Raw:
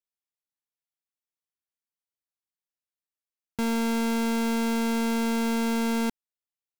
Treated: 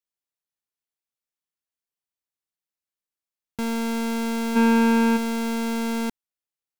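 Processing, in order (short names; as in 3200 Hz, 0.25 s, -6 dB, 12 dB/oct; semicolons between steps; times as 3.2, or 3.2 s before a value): 4.55–5.16 small resonant body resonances 330/1000/1500/2400 Hz, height 18 dB -> 15 dB, ringing for 25 ms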